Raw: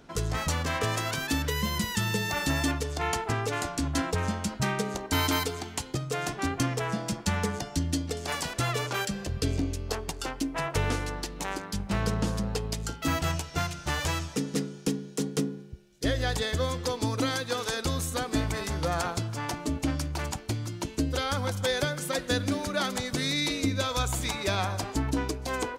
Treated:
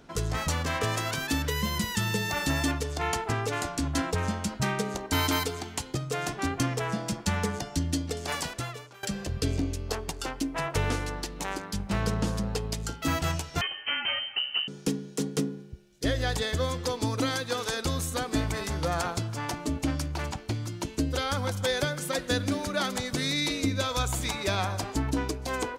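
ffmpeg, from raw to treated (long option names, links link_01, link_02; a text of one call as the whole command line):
ffmpeg -i in.wav -filter_complex "[0:a]asettb=1/sr,asplit=3[link_01][link_02][link_03];[link_01]atrim=end=13.614[link_04];[link_02]atrim=start=13.61:end=14.68,asetpts=PTS-STARTPTS,afade=type=in:duration=0.004:curve=qsin,afade=type=out:start_time=1.066:duration=0.004:curve=qsin,lowpass=frequency=2700:width_type=q:width=0.5098,lowpass=frequency=2700:width_type=q:width=0.6013,lowpass=frequency=2700:width_type=q:width=0.9,lowpass=frequency=2700:width_type=q:width=2.563,afreqshift=-3200[link_05];[link_03]atrim=start=14.676[link_06];[link_04][link_05]acrossfade=duration=0.004:curve1=hsin:curve2=qsin[link_07];[link_07][link_06]acrossfade=duration=0.004:curve1=qsin:curve2=hsin,asettb=1/sr,asplit=3[link_08][link_09][link_10];[link_08]atrim=end=20.064[link_11];[link_09]atrim=start=20.06:end=20.65,asetpts=PTS-STARTPTS,afade=type=in:duration=0.004:curve=qsin,afade=type=out:start_time=0.586:duration=0.004:curve=qsin,acrossover=split=5600[link_12][link_13];[link_13]acompressor=threshold=-47dB:ratio=4:attack=1:release=60[link_14];[link_12][link_14]amix=inputs=2:normalize=0[link_15];[link_10]atrim=start=20.646[link_16];[link_11][link_15]acrossfade=duration=0.004:curve1=hsin:curve2=qsin[link_17];[link_17][link_16]acrossfade=duration=0.004:curve1=qsin:curve2=hsin,asplit=2[link_18][link_19];[link_18]atrim=end=9.03,asetpts=PTS-STARTPTS,afade=type=out:start_time=8.43:duration=0.6:curve=qua:silence=0.0841395[link_20];[link_19]atrim=start=9.03,asetpts=PTS-STARTPTS,afade=type=in:duration=0.004:curve=hsin:silence=0.0841395[link_21];[link_20][link_21]concat=n=2:v=0:a=1" out.wav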